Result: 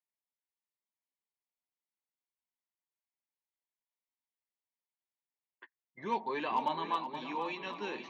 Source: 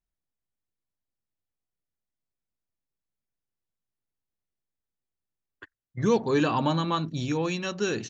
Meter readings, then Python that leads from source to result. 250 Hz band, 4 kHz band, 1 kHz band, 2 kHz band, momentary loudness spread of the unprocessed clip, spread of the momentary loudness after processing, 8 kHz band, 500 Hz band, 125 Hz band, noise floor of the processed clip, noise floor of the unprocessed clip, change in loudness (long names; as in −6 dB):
−15.5 dB, −9.5 dB, −2.5 dB, −7.5 dB, 6 LU, 6 LU, can't be measured, −13.0 dB, −25.0 dB, below −85 dBFS, below −85 dBFS, −9.5 dB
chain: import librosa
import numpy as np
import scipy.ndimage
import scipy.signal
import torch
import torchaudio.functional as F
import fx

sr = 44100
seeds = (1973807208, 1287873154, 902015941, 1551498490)

y = fx.chorus_voices(x, sr, voices=2, hz=1.0, base_ms=12, depth_ms=4.0, mix_pct=30)
y = fx.cabinet(y, sr, low_hz=240.0, low_slope=24, high_hz=4000.0, hz=(300.0, 460.0, 950.0, 1400.0, 2100.0), db=(-7, -5, 10, -8, 8))
y = np.clip(y, -10.0 ** (-16.5 / 20.0), 10.0 ** (-16.5 / 20.0))
y = fx.echo_swing(y, sr, ms=789, ratio=1.5, feedback_pct=39, wet_db=-10)
y = F.gain(torch.from_numpy(y), -6.5).numpy()